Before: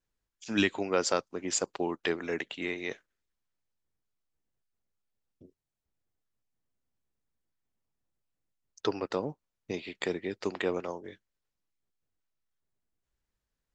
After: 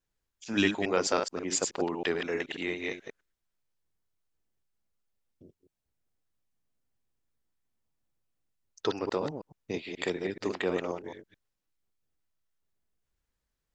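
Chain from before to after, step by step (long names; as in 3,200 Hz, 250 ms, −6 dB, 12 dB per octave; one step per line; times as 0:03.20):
delay that plays each chunk backwards 107 ms, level −4.5 dB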